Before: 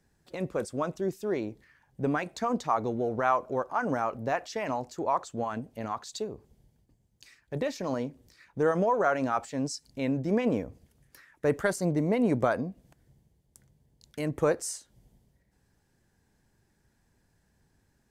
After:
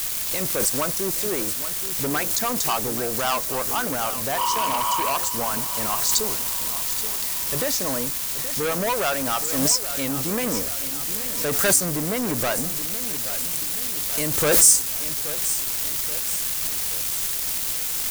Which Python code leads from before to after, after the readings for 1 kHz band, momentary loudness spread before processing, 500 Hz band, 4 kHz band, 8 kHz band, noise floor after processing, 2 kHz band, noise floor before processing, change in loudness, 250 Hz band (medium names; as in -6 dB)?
+4.5 dB, 11 LU, +1.5 dB, +20.0 dB, +24.0 dB, -28 dBFS, +8.0 dB, -71 dBFS, +9.0 dB, +1.0 dB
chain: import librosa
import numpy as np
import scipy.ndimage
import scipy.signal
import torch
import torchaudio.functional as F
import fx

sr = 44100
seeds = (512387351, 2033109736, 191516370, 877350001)

p1 = fx.spec_repair(x, sr, seeds[0], start_s=4.41, length_s=0.67, low_hz=890.0, high_hz=2700.0, source='after')
p2 = fx.dmg_noise_colour(p1, sr, seeds[1], colour='pink', level_db=-45.0)
p3 = fx.dynamic_eq(p2, sr, hz=3000.0, q=0.98, threshold_db=-47.0, ratio=4.0, max_db=-5)
p4 = fx.leveller(p3, sr, passes=3)
p5 = fx.rider(p4, sr, range_db=4, speed_s=2.0)
p6 = p4 + (p5 * librosa.db_to_amplitude(0.0))
p7 = F.preemphasis(torch.from_numpy(p6), 0.9).numpy()
p8 = fx.echo_feedback(p7, sr, ms=827, feedback_pct=52, wet_db=-12.5)
p9 = fx.pre_swell(p8, sr, db_per_s=37.0)
y = p9 * librosa.db_to_amplitude(4.0)